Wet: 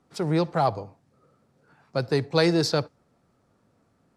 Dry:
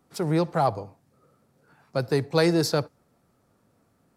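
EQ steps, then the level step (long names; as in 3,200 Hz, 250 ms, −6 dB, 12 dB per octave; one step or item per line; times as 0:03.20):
dynamic equaliser 3,700 Hz, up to +4 dB, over −41 dBFS, Q 0.98
high-frequency loss of the air 70 metres
high-shelf EQ 7,100 Hz +6 dB
0.0 dB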